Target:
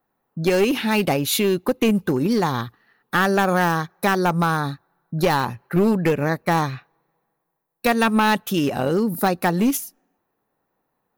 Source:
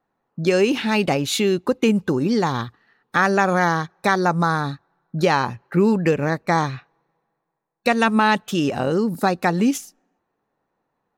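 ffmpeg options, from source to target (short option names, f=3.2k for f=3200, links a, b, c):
-af "atempo=1,aeval=exprs='clip(val(0),-1,0.168)':c=same,aexciter=amount=2.5:drive=9.2:freq=10k"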